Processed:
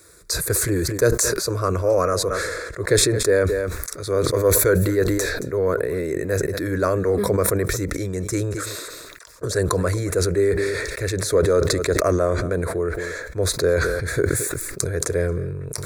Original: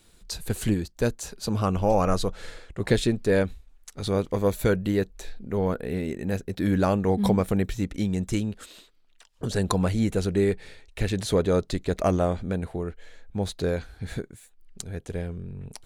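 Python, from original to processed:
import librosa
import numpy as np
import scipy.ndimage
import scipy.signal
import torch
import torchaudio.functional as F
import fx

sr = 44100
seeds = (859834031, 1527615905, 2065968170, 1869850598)

p1 = scipy.signal.sosfilt(scipy.signal.butter(2, 72.0, 'highpass', fs=sr, output='sos'), x)
p2 = fx.low_shelf(p1, sr, hz=110.0, db=-6.0)
p3 = fx.rider(p2, sr, range_db=10, speed_s=0.5)
p4 = p2 + (p3 * librosa.db_to_amplitude(2.5))
p5 = fx.fixed_phaser(p4, sr, hz=810.0, stages=6)
p6 = p5 + fx.echo_single(p5, sr, ms=223, db=-21.0, dry=0)
y = fx.sustainer(p6, sr, db_per_s=28.0)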